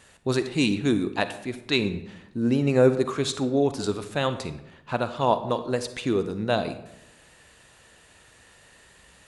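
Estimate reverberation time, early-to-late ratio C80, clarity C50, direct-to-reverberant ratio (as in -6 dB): 0.85 s, 13.5 dB, 11.5 dB, 10.5 dB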